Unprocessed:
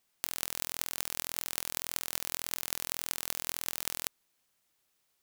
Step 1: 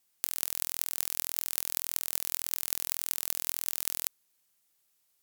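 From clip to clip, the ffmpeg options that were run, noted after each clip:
ffmpeg -i in.wav -af "aemphasis=mode=production:type=cd,volume=-4dB" out.wav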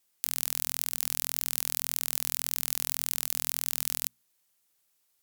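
ffmpeg -i in.wav -af "acrusher=bits=2:mode=log:mix=0:aa=0.000001,bandreject=frequency=60:width_type=h:width=6,bandreject=frequency=120:width_type=h:width=6,bandreject=frequency=180:width_type=h:width=6,bandreject=frequency=240:width_type=h:width=6" out.wav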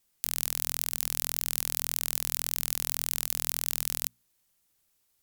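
ffmpeg -i in.wav -af "lowshelf=frequency=210:gain=11.5" out.wav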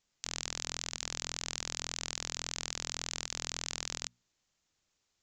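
ffmpeg -i in.wav -af "aresample=16000,aresample=44100,volume=-1dB" out.wav

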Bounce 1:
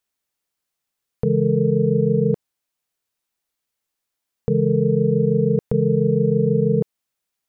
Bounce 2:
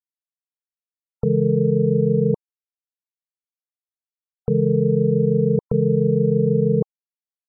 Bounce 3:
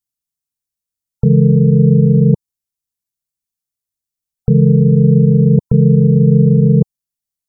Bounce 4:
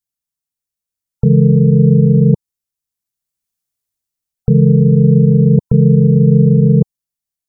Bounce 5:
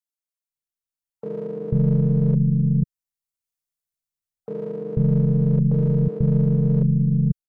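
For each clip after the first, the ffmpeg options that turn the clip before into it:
ffmpeg -i in.wav -af "afftfilt=real='re*gte(hypot(re,im),0.0141)':imag='im*gte(hypot(re,im),0.0141)':win_size=1024:overlap=0.75" out.wav
ffmpeg -i in.wav -af "bass=frequency=250:gain=15,treble=frequency=4000:gain=12,alimiter=limit=-2.5dB:level=0:latency=1:release=11" out.wav
ffmpeg -i in.wav -af "dynaudnorm=framelen=320:gausssize=5:maxgain=7.5dB,volume=-1dB" out.wav
ffmpeg -i in.wav -filter_complex "[0:a]aeval=exprs='if(lt(val(0),0),0.708*val(0),val(0))':channel_layout=same,acrossover=split=290[link_01][link_02];[link_01]adelay=490[link_03];[link_03][link_02]amix=inputs=2:normalize=0,volume=-7.5dB" out.wav

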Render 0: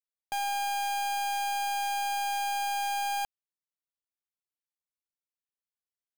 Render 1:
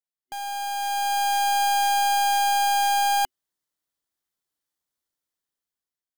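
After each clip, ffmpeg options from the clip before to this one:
ffmpeg -i in.wav -af "superequalizer=6b=1.41:12b=0.562,dynaudnorm=framelen=430:gausssize=5:maxgain=12dB,volume=-2.5dB" out.wav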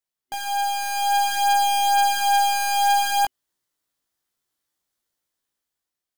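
ffmpeg -i in.wav -filter_complex "[0:a]asplit=2[link_01][link_02];[link_02]alimiter=level_in=5.5dB:limit=-24dB:level=0:latency=1:release=116,volume=-5.5dB,volume=2dB[link_03];[link_01][link_03]amix=inputs=2:normalize=0,flanger=delay=17:depth=2.1:speed=0.57,volume=1.5dB" out.wav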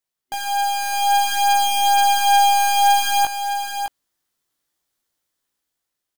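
ffmpeg -i in.wav -af "aecho=1:1:612:0.398,volume=3dB" out.wav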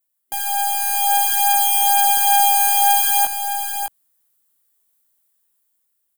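ffmpeg -i in.wav -filter_complex "[0:a]acrossover=split=130[link_01][link_02];[link_01]alimiter=level_in=11dB:limit=-24dB:level=0:latency=1,volume=-11dB[link_03];[link_02]aexciter=amount=5.5:drive=2.4:freq=7800[link_04];[link_03][link_04]amix=inputs=2:normalize=0,volume=-2dB" out.wav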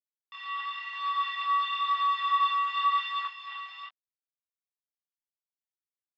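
ffmpeg -i in.wav -af "aeval=exprs='val(0)*gte(abs(val(0)),0.106)':channel_layout=same,flanger=delay=22.5:depth=4.7:speed=0.96,highpass=frequency=410:width_type=q:width=0.5412,highpass=frequency=410:width_type=q:width=1.307,lowpass=frequency=3300:width_type=q:width=0.5176,lowpass=frequency=3300:width_type=q:width=0.7071,lowpass=frequency=3300:width_type=q:width=1.932,afreqshift=330,volume=-5.5dB" out.wav

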